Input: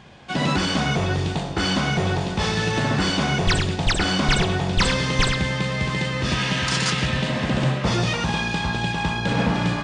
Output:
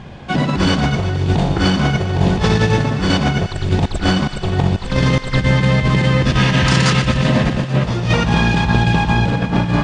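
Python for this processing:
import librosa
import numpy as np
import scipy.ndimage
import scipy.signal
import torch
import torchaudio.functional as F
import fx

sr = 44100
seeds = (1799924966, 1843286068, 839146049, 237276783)

p1 = fx.tilt_eq(x, sr, slope=-2.0)
p2 = fx.over_compress(p1, sr, threshold_db=-20.0, ratio=-0.5)
p3 = p2 + fx.echo_thinned(p2, sr, ms=119, feedback_pct=80, hz=660.0, wet_db=-13, dry=0)
y = p3 * librosa.db_to_amplitude(5.0)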